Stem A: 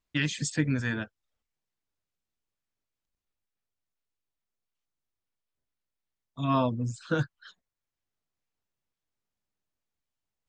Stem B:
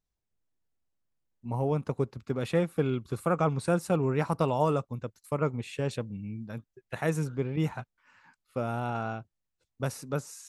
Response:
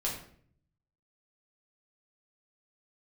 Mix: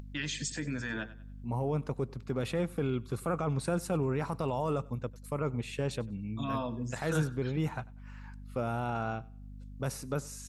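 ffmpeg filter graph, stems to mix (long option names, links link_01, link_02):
-filter_complex "[0:a]alimiter=limit=-23dB:level=0:latency=1:release=30,highpass=frequency=220:poles=1,volume=-1dB,asplit=2[link_01][link_02];[link_02]volume=-16dB[link_03];[1:a]alimiter=limit=-22.5dB:level=0:latency=1:release=23,aeval=exprs='val(0)+0.00398*(sin(2*PI*50*n/s)+sin(2*PI*2*50*n/s)/2+sin(2*PI*3*50*n/s)/3+sin(2*PI*4*50*n/s)/4+sin(2*PI*5*50*n/s)/5)':channel_layout=same,volume=0dB,asplit=2[link_04][link_05];[link_05]volume=-23.5dB[link_06];[link_03][link_06]amix=inputs=2:normalize=0,aecho=0:1:96|192|288|384:1|0.26|0.0676|0.0176[link_07];[link_01][link_04][link_07]amix=inputs=3:normalize=0,acompressor=mode=upward:threshold=-40dB:ratio=2.5"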